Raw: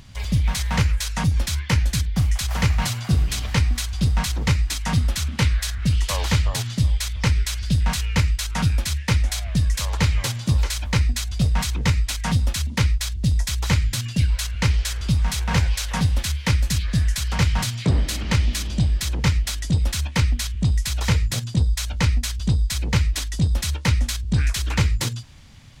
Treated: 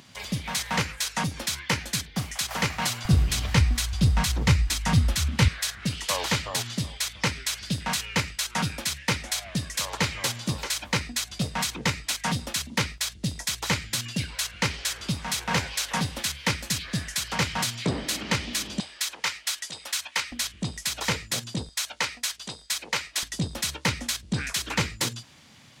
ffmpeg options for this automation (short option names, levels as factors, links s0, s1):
-af "asetnsamples=n=441:p=0,asendcmd='3.05 highpass f 57;5.48 highpass f 220;18.8 highpass f 900;20.32 highpass f 260;21.69 highpass f 600;23.23 highpass f 210',highpass=230"